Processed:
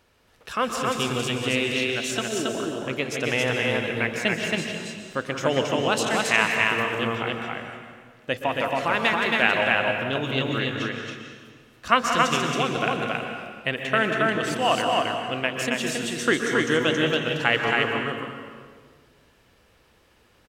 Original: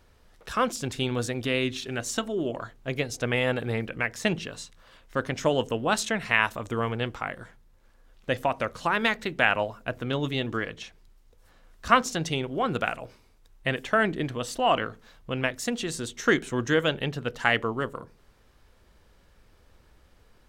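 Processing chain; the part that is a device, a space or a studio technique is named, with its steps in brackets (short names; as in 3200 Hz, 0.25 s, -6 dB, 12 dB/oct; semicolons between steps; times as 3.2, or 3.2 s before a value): stadium PA (HPF 160 Hz 6 dB/oct; bell 2700 Hz +4.5 dB 0.46 oct; loudspeakers at several distances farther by 63 m -12 dB, 94 m -2 dB; reverb RT60 1.7 s, pre-delay 0.117 s, DRR 4.5 dB)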